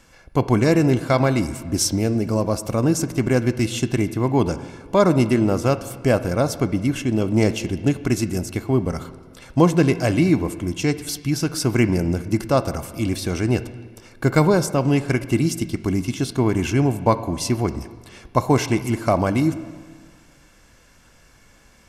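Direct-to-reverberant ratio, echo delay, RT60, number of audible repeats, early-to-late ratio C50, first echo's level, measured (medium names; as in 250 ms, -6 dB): 12.0 dB, no echo, 1.7 s, no echo, 13.5 dB, no echo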